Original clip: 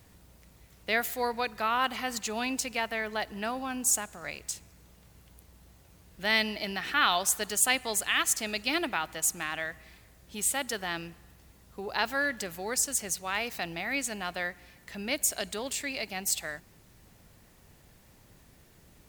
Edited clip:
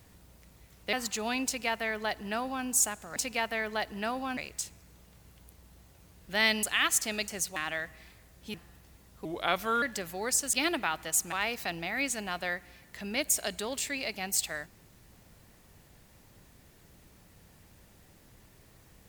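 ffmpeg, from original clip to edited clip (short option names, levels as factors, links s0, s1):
-filter_complex "[0:a]asplit=12[s0][s1][s2][s3][s4][s5][s6][s7][s8][s9][s10][s11];[s0]atrim=end=0.932[s12];[s1]atrim=start=2.038:end=4.272[s13];[s2]atrim=start=2.558:end=3.772[s14];[s3]atrim=start=4.268:end=6.532[s15];[s4]atrim=start=7.978:end=8.632[s16];[s5]atrim=start=12.978:end=13.262[s17];[s6]atrim=start=9.418:end=10.402[s18];[s7]atrim=start=11.088:end=11.804[s19];[s8]atrim=start=11.8:end=12.27,asetpts=PTS-STARTPTS,asetrate=36162,aresample=44100[s20];[s9]atrim=start=12.266:end=12.982[s21];[s10]atrim=start=8.628:end=9.422[s22];[s11]atrim=start=13.258[s23];[s12][s13]acrossfade=d=0.004:c1=hsin:c2=hsin[s24];[s24][s14]acrossfade=d=0.004:c1=hsin:c2=hsin[s25];[s25][s15]acrossfade=d=0.004:c1=hsin:c2=hsin[s26];[s26][s16]acrossfade=d=0.004:c1=hsin:c2=hsin[s27];[s27][s17]acrossfade=d=0.004:c1=hsin:c2=hsin[s28];[s28][s18]acrossfade=d=0.004:c1=hsin:c2=hsin[s29];[s29][s19]acrossfade=d=0.004:c1=hsin:c2=hsin[s30];[s30][s20]acrossfade=d=0.004:c1=hsin:c2=hsin[s31];[s31][s21]acrossfade=d=0.004:c1=hsin:c2=hsin[s32];[s32][s22]acrossfade=d=0.004:c1=hsin:c2=hsin[s33];[s33][s23]acrossfade=d=0.004:c1=hsin:c2=hsin"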